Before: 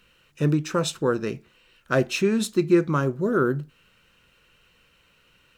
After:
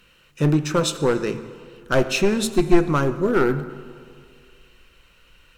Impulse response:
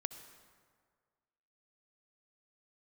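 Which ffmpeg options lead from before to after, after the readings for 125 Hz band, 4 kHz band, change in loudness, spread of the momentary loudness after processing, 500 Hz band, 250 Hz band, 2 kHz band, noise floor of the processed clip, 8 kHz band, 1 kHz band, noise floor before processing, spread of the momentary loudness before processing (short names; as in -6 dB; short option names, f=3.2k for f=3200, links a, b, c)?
+2.5 dB, +4.5 dB, +3.0 dB, 13 LU, +3.0 dB, +2.0 dB, +3.0 dB, -56 dBFS, +4.5 dB, +4.0 dB, -62 dBFS, 8 LU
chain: -filter_complex "[0:a]aeval=exprs='clip(val(0),-1,0.126)':c=same,asubboost=boost=5.5:cutoff=56,bandreject=f=111.2:t=h:w=4,bandreject=f=222.4:t=h:w=4,bandreject=f=333.6:t=h:w=4,bandreject=f=444.8:t=h:w=4,bandreject=f=556:t=h:w=4,bandreject=f=667.2:t=h:w=4,bandreject=f=778.4:t=h:w=4,bandreject=f=889.6:t=h:w=4,bandreject=f=1.0008k:t=h:w=4,bandreject=f=1.112k:t=h:w=4,bandreject=f=1.2232k:t=h:w=4,bandreject=f=1.3344k:t=h:w=4,bandreject=f=1.4456k:t=h:w=4,bandreject=f=1.5568k:t=h:w=4,bandreject=f=1.668k:t=h:w=4,bandreject=f=1.7792k:t=h:w=4,bandreject=f=1.8904k:t=h:w=4,bandreject=f=2.0016k:t=h:w=4,bandreject=f=2.1128k:t=h:w=4,bandreject=f=2.224k:t=h:w=4,bandreject=f=2.3352k:t=h:w=4,bandreject=f=2.4464k:t=h:w=4,bandreject=f=2.5576k:t=h:w=4,bandreject=f=2.6688k:t=h:w=4,bandreject=f=2.78k:t=h:w=4,bandreject=f=2.8912k:t=h:w=4,bandreject=f=3.0024k:t=h:w=4,bandreject=f=3.1136k:t=h:w=4,asplit=2[a][b];[1:a]atrim=start_sample=2205,asetrate=37044,aresample=44100[c];[b][c]afir=irnorm=-1:irlink=0,volume=2.5dB[d];[a][d]amix=inputs=2:normalize=0,volume=-2.5dB"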